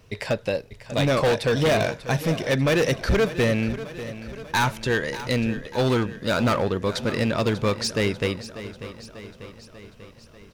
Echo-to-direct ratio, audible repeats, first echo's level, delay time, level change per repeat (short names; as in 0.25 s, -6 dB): -12.0 dB, 5, -14.0 dB, 0.592 s, -4.5 dB